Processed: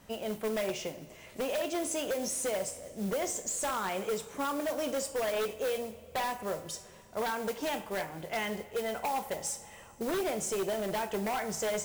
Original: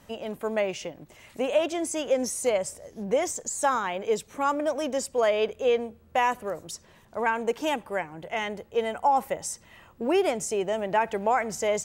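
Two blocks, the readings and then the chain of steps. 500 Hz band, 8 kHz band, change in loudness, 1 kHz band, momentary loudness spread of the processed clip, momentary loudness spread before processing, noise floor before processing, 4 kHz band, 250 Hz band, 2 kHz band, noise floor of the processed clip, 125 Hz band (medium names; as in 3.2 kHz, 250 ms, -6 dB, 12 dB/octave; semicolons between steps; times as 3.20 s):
-7.0 dB, -2.0 dB, -6.5 dB, -8.5 dB, 6 LU, 11 LU, -56 dBFS, -3.0 dB, -4.5 dB, -6.0 dB, -53 dBFS, -1.5 dB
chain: compression, threshold -25 dBFS, peak gain reduction 7.5 dB; modulation noise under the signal 16 dB; two-slope reverb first 0.46 s, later 3.2 s, from -18 dB, DRR 7 dB; wavefolder -23.5 dBFS; trim -2.5 dB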